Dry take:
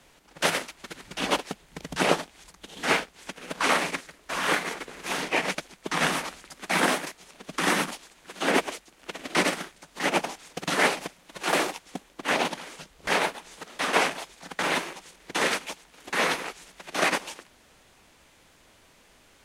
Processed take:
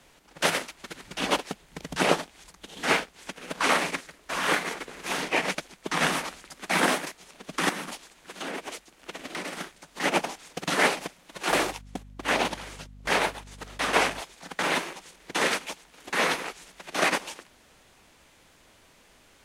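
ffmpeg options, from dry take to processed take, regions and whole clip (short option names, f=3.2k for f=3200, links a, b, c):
-filter_complex "[0:a]asettb=1/sr,asplit=3[a][b][c];[a]atrim=end=7.694[d];[b]atrim=start=7.69:end=9.6,asetpts=PTS-STARTPTS,afade=t=in:d=0.004:c=qsin,afade=t=out:st=1.906:d=0.004:c=qsin,acompressor=threshold=-31dB:ratio=6:attack=3.2:release=140:knee=1:detection=peak,volume=26.5dB,asoftclip=hard,volume=-26.5dB[e];[c]atrim=start=9.596[f];[d][e]acrossfade=d=0.004:c1=hsin:c2=qsin[g];[g][f]acrossfade=d=0.004:c1=qsin:c2=hsin,asettb=1/sr,asplit=3[h][i][j];[h]atrim=end=11.514[k];[i]atrim=start=11.51:end=14.21,asetpts=PTS-STARTPTS,afade=t=in:d=0.004:c=qsin,afade=t=out:st=2.696:d=0.004:c=qsin,agate=range=-12dB:threshold=-49dB:ratio=16:release=100:detection=peak,aeval=exprs='val(0)+0.00501*(sin(2*PI*50*n/s)+sin(2*PI*2*50*n/s)/2+sin(2*PI*3*50*n/s)/3+sin(2*PI*4*50*n/s)/4+sin(2*PI*5*50*n/s)/5)':c=same[l];[j]atrim=start=14.206[m];[k][l]acrossfade=d=0.004:c1=hsin:c2=qsin[n];[n][m]acrossfade=d=0.004:c1=qsin:c2=hsin"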